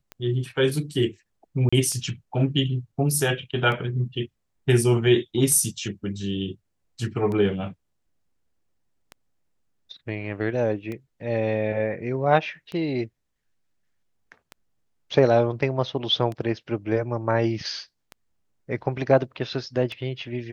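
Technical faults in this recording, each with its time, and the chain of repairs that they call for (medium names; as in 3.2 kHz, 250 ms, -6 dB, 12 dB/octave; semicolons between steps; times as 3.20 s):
tick 33 1/3 rpm -21 dBFS
1.69–1.73 s: dropout 35 ms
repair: de-click; interpolate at 1.69 s, 35 ms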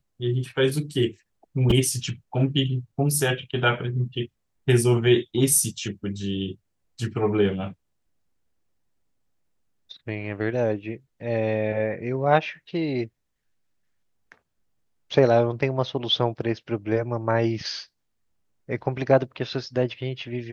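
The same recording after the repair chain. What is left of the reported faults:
nothing left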